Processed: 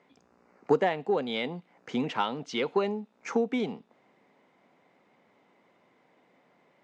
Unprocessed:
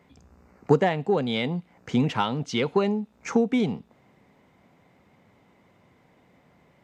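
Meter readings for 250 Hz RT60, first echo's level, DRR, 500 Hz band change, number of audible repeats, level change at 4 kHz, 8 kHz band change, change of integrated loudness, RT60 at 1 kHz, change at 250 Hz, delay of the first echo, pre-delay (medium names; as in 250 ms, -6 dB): no reverb, no echo, no reverb, -3.5 dB, no echo, -4.0 dB, no reading, -4.5 dB, no reverb, -7.0 dB, no echo, no reverb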